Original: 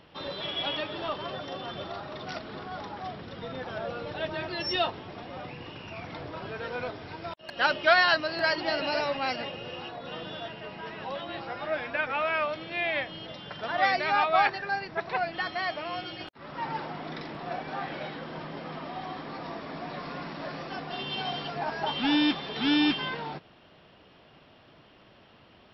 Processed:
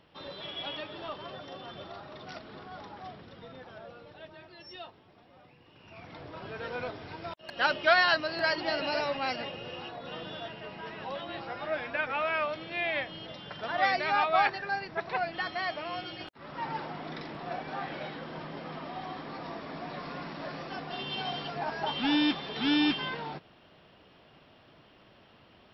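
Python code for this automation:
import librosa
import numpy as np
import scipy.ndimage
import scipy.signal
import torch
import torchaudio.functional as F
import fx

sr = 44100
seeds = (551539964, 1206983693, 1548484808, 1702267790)

y = fx.gain(x, sr, db=fx.line((3.08, -6.5), (4.51, -17.5), (5.66, -17.5), (5.97, -8.5), (6.66, -2.0)))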